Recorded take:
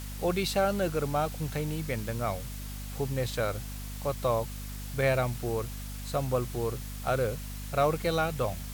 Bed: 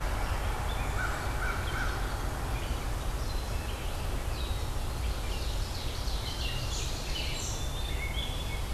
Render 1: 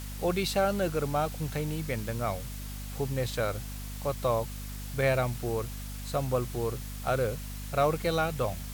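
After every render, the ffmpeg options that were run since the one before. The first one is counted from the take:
-af anull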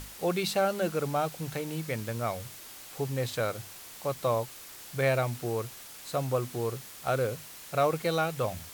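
-af "bandreject=f=50:t=h:w=6,bandreject=f=100:t=h:w=6,bandreject=f=150:t=h:w=6,bandreject=f=200:t=h:w=6,bandreject=f=250:t=h:w=6"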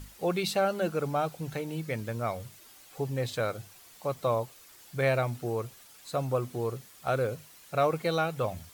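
-af "afftdn=nr=9:nf=-47"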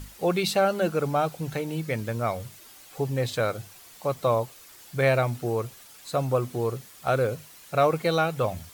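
-af "volume=1.68"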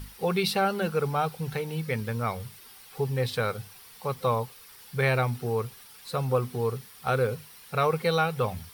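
-af "superequalizer=6b=0.316:8b=0.398:15b=0.398"

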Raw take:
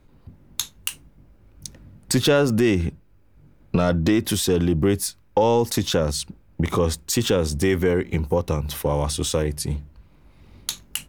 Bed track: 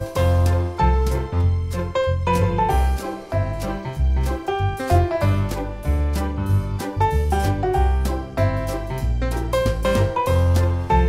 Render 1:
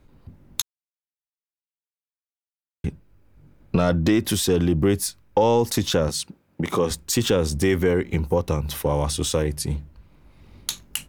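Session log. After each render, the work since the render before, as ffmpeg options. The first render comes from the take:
-filter_complex "[0:a]asettb=1/sr,asplit=3[s0][s1][s2];[s0]atrim=end=6.094[s3];[s1]atrim=start=6.09:end=6.91,asetpts=PTS-STARTPTS,afade=t=in:d=0.004:c=qsin,afade=t=out:st=0.816:d=0.004:c=qsin,highpass=170[s4];[s2]atrim=start=6.906[s5];[s3][s4]acrossfade=d=0.004:c1=hsin:c2=qsin[s6];[s6][s5]acrossfade=d=0.004:c1=qsin:c2=hsin,asplit=3[s7][s8][s9];[s7]atrim=end=0.62,asetpts=PTS-STARTPTS,afade=t=out:st=0.616:d=0.004:c=hsin[s10];[s8]atrim=start=0.62:end=2.84,asetpts=PTS-STARTPTS,volume=0[s11];[s9]atrim=start=2.84,asetpts=PTS-STARTPTS,afade=t=in:d=0.004:c=hsin[s12];[s10][s11][s12]concat=n=3:v=0:a=1"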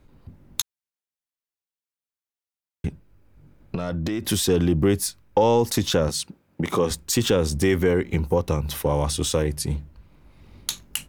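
-filter_complex "[0:a]asettb=1/sr,asplit=3[s0][s1][s2];[s0]atrim=end=2.874[s3];[s1]atrim=start=2.87:end=4.23,asetpts=PTS-STARTPTS,afade=t=in:d=0.004:c=qsin,afade=t=out:st=1.356:d=0.004:c=qsin,acompressor=threshold=0.0708:ratio=6:attack=3.2:release=140:knee=1:detection=peak[s4];[s2]atrim=start=4.226[s5];[s3][s4]acrossfade=d=0.004:c1=hsin:c2=qsin[s6];[s6][s5]acrossfade=d=0.004:c1=qsin:c2=hsin"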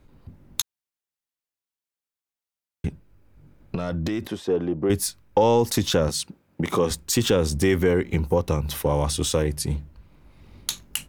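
-filter_complex "[0:a]asettb=1/sr,asplit=3[s0][s1][s2];[s0]atrim=end=4.274[s3];[s1]atrim=start=4.27:end=4.9,asetpts=PTS-STARTPTS,afade=t=in:d=0.004:c=qsin,afade=t=out:st=0.626:d=0.004:c=qsin,bandpass=f=590:t=q:w=0.9[s4];[s2]atrim=start=4.896[s5];[s3][s4]acrossfade=d=0.004:c1=hsin:c2=qsin[s6];[s6][s5]acrossfade=d=0.004:c1=qsin:c2=hsin"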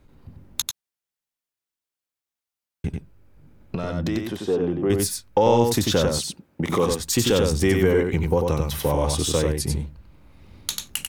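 -af "aecho=1:1:93:0.631"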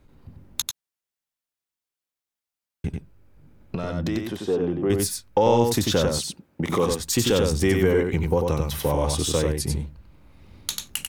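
-af "volume=0.891"

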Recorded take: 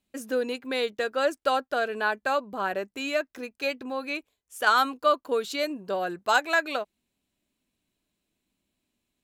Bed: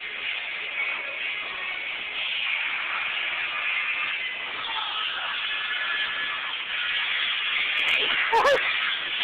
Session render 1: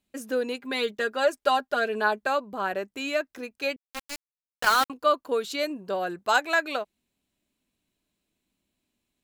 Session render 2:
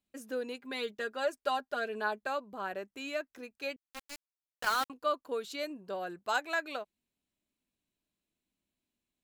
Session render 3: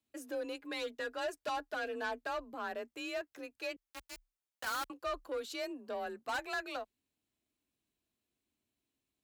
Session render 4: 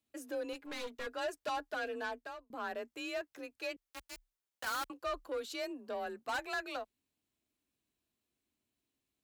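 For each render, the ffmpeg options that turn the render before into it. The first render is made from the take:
-filter_complex "[0:a]asettb=1/sr,asplit=3[s0][s1][s2];[s0]atrim=end=0.614[s3];[s1]atrim=start=0.61:end=2.27,asetpts=PTS-STARTPTS,afade=t=in:d=0.004:c=qsin,afade=t=out:st=1.656:d=0.004:c=qsin,aecho=1:1:4.9:0.65,atrim=end_sample=73206[s4];[s2]atrim=start=2.266[s5];[s3][s4]acrossfade=d=0.004:c1=hsin:c2=qsin[s6];[s6][s5]acrossfade=d=0.004:c1=qsin:c2=hsin,asettb=1/sr,asplit=3[s7][s8][s9];[s7]atrim=end=3.764[s10];[s8]atrim=start=3.76:end=4.9,asetpts=PTS-STARTPTS,afade=t=in:d=0.004:c=qsin,afade=t=out:st=1.136:d=0.004:c=qsin,aeval=exprs='val(0)*gte(abs(val(0)),0.0708)':c=same[s11];[s9]atrim=start=4.896[s12];[s10][s11]acrossfade=d=0.004:c1=hsin:c2=qsin[s13];[s13][s12]acrossfade=d=0.004:c1=qsin:c2=hsin"
-af "volume=0.355"
-af "asoftclip=type=tanh:threshold=0.0251,afreqshift=33"
-filter_complex "[0:a]asettb=1/sr,asplit=3[s0][s1][s2];[s0]atrim=end=0.534[s3];[s1]atrim=start=0.53:end=1.07,asetpts=PTS-STARTPTS,afade=t=in:d=0.004:c=qsin,afade=t=out:st=0.536:d=0.004:c=qsin,aeval=exprs='clip(val(0),-1,0.00376)':c=same[s4];[s2]atrim=start=1.066[s5];[s3][s4]acrossfade=d=0.004:c1=hsin:c2=qsin[s6];[s6][s5]acrossfade=d=0.004:c1=qsin:c2=hsin,asplit=2[s7][s8];[s7]atrim=end=2.5,asetpts=PTS-STARTPTS,afade=t=out:st=1.78:d=0.72:c=qsin[s9];[s8]atrim=start=2.5,asetpts=PTS-STARTPTS,afade=t=in:d=0.004:c=hsin[s10];[s9][s10]concat=n=2:v=0:a=1"

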